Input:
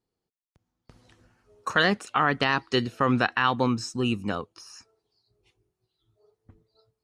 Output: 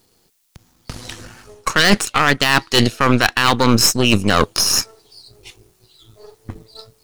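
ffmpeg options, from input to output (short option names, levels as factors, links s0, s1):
-af "aeval=exprs='if(lt(val(0),0),0.447*val(0),val(0))':c=same,highshelf=f=2700:g=11,areverse,acompressor=threshold=0.0178:ratio=10,areverse,aeval=exprs='0.0501*(cos(1*acos(clip(val(0)/0.0501,-1,1)))-cos(1*PI/2))+0.0224*(cos(2*acos(clip(val(0)/0.0501,-1,1)))-cos(2*PI/2))':c=same,apsyclip=18.8,volume=0.841"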